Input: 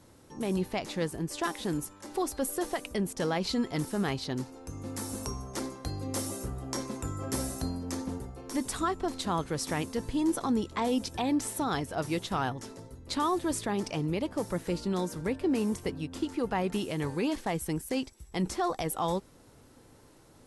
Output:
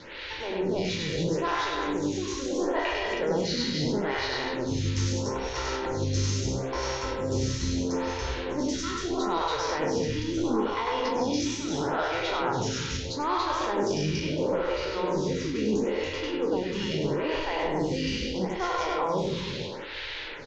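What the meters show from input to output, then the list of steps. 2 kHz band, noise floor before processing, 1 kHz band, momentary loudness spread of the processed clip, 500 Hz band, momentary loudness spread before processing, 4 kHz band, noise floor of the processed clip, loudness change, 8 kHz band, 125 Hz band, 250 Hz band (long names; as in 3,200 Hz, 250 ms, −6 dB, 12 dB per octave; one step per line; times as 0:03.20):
+7.0 dB, −57 dBFS, +4.5 dB, 4 LU, +5.5 dB, 7 LU, +7.5 dB, −36 dBFS, +3.5 dB, +1.5 dB, +4.5 dB, +1.5 dB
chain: peak hold with a decay on every bin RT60 0.90 s
in parallel at +1 dB: output level in coarse steps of 13 dB
on the sum: comb filter 2.1 ms, depth 39%
soft clipping −15.5 dBFS, distortion −19 dB
noise in a band 1,500–4,300 Hz −47 dBFS
reversed playback
downward compressor 10 to 1, threshold −33 dBFS, peak gain reduction 14 dB
reversed playback
Butterworth low-pass 6,800 Hz 96 dB per octave
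loudspeakers that aren't time-aligned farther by 34 metres −2 dB, 48 metres −11 dB, 97 metres −3 dB
phaser with staggered stages 0.76 Hz
level +8 dB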